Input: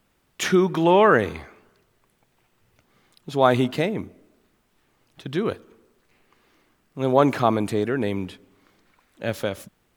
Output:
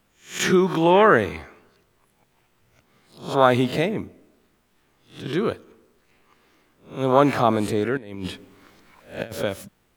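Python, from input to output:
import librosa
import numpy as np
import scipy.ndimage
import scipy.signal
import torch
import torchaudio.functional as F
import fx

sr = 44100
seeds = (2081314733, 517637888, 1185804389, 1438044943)

y = fx.spec_swells(x, sr, rise_s=0.37)
y = fx.over_compress(y, sr, threshold_db=-31.0, ratio=-0.5, at=(7.97, 9.33))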